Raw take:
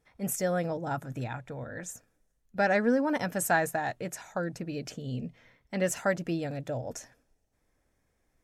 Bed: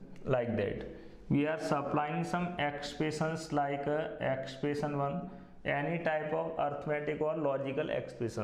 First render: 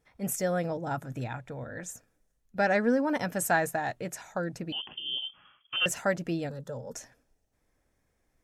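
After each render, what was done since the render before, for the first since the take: 4.72–5.86 inverted band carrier 3300 Hz; 6.49–6.95 fixed phaser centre 460 Hz, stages 8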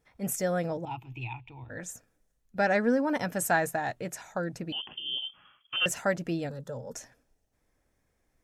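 0.85–1.7 EQ curve 120 Hz 0 dB, 190 Hz -20 dB, 350 Hz -3 dB, 560 Hz -27 dB, 900 Hz +3 dB, 1600 Hz -25 dB, 2600 Hz +13 dB, 3800 Hz -5 dB, 10000 Hz -28 dB, 15000 Hz -2 dB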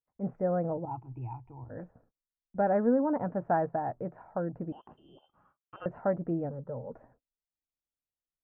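gate -58 dBFS, range -31 dB; LPF 1100 Hz 24 dB/oct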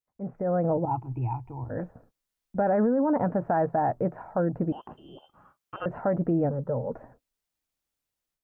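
limiter -26.5 dBFS, peak gain reduction 10.5 dB; AGC gain up to 9.5 dB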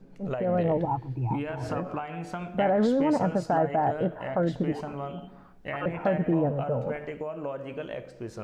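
add bed -2 dB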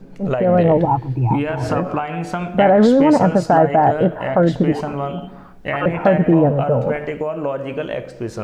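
gain +11.5 dB

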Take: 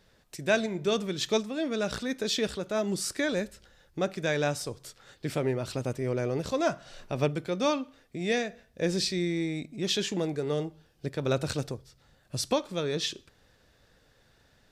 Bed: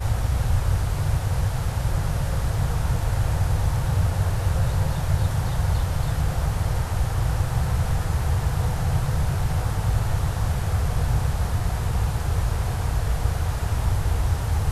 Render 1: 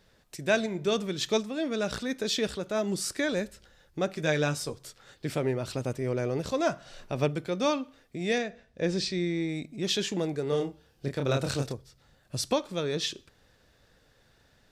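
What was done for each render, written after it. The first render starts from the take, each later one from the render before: 4.15–4.75 doubler 13 ms -6 dB; 8.38–9.49 air absorption 63 m; 10.49–11.73 doubler 29 ms -4 dB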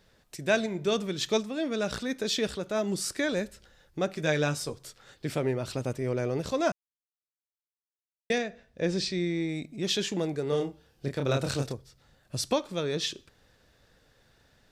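6.72–8.3 mute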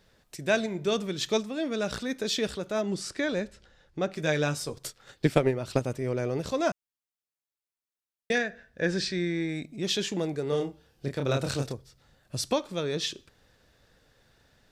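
2.81–4.14 air absorption 61 m; 4.76–5.8 transient shaper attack +11 dB, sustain -3 dB; 8.35–9.64 bell 1600 Hz +13.5 dB 0.33 oct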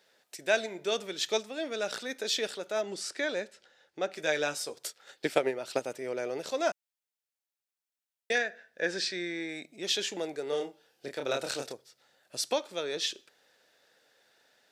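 HPF 470 Hz 12 dB/oct; bell 1100 Hz -7 dB 0.27 oct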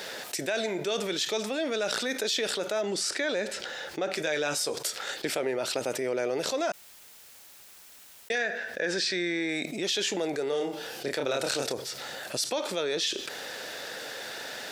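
limiter -21 dBFS, peak gain reduction 11.5 dB; fast leveller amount 70%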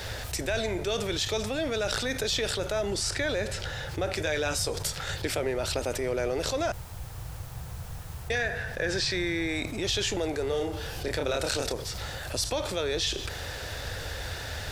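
add bed -16.5 dB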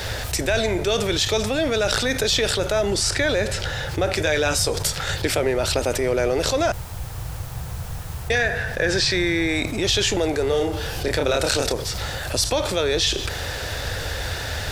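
gain +8 dB

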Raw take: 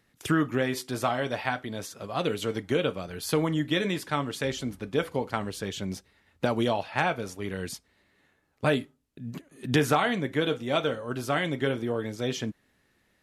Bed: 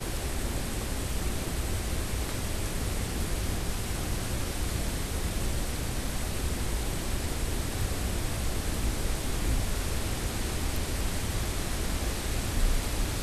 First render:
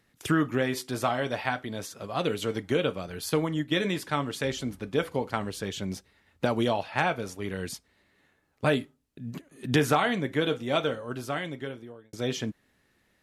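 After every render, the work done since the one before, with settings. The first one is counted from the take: 3.29–3.72 upward expander, over -36 dBFS; 10.8–12.13 fade out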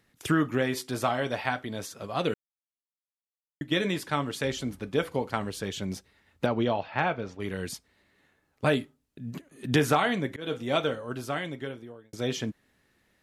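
2.34–3.61 mute; 6.46–7.4 air absorption 190 m; 10.1–10.64 auto swell 0.218 s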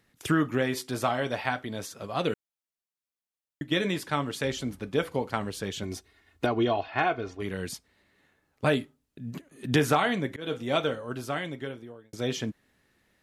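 5.83–7.42 comb 2.8 ms, depth 61%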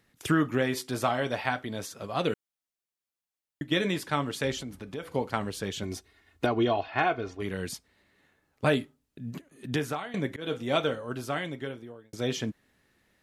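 4.6–5.11 compressor 2.5:1, threshold -37 dBFS; 9.26–10.14 fade out, to -17.5 dB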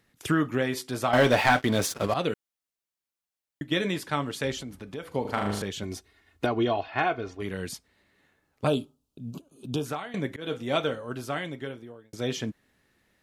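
1.13–2.14 sample leveller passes 3; 5.21–5.62 flutter echo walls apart 6.7 m, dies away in 0.77 s; 8.67–9.86 Butterworth band-stop 1900 Hz, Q 1.2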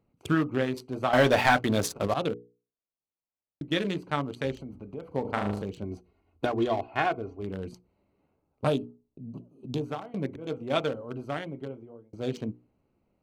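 Wiener smoothing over 25 samples; notches 60/120/180/240/300/360/420/480 Hz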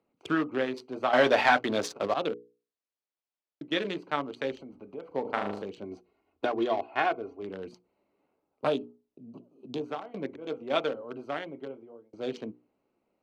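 three-band isolator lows -18 dB, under 240 Hz, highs -16 dB, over 6100 Hz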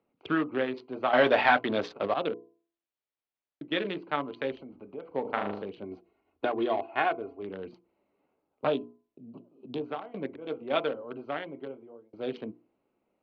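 LPF 3800 Hz 24 dB/oct; de-hum 337.6 Hz, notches 3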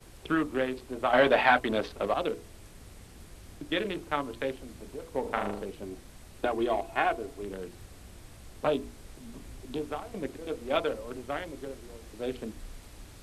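add bed -18.5 dB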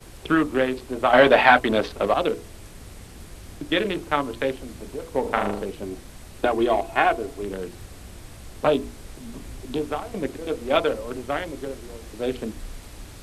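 gain +7.5 dB

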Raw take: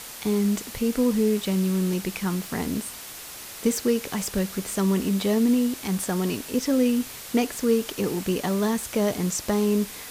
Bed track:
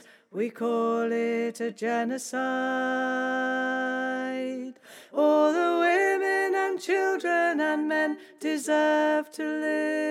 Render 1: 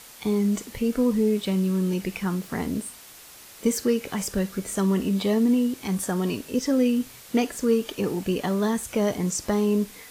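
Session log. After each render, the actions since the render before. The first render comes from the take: noise print and reduce 7 dB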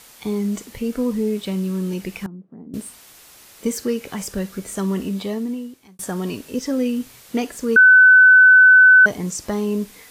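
2.26–2.74 ladder band-pass 250 Hz, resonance 30%; 5.02–5.99 fade out; 7.76–9.06 bleep 1510 Hz -6 dBFS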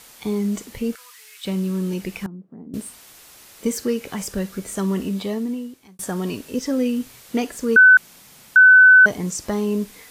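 0.95–1.45 HPF 1400 Hz 24 dB/oct; 7.97–8.56 room tone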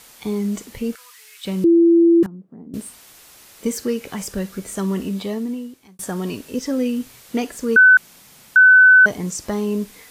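1.64–2.23 bleep 337 Hz -9 dBFS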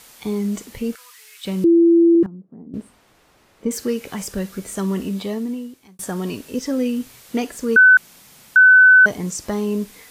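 2.15–3.71 LPF 1000 Hz 6 dB/oct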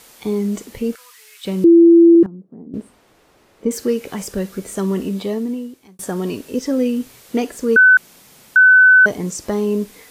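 bell 410 Hz +5 dB 1.5 oct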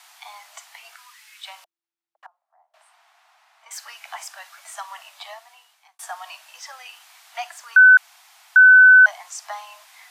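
steep high-pass 680 Hz 96 dB/oct; high shelf 6800 Hz -11 dB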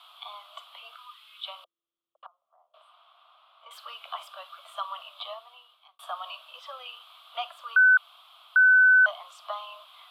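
EQ curve 270 Hz 0 dB, 530 Hz +9 dB, 840 Hz -9 dB, 1200 Hz +8 dB, 1800 Hz -20 dB, 3300 Hz +7 dB, 6100 Hz -27 dB, 11000 Hz -13 dB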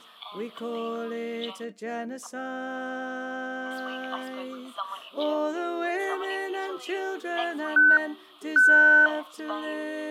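add bed track -6.5 dB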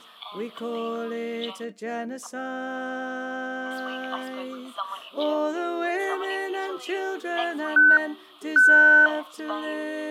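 gain +2 dB

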